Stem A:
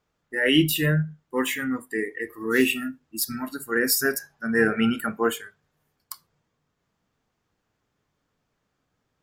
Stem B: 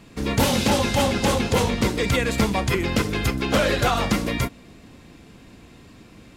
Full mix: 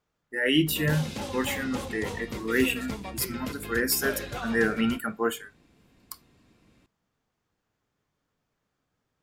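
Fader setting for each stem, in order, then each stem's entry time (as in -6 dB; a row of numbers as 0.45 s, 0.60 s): -3.5 dB, -15.0 dB; 0.00 s, 0.50 s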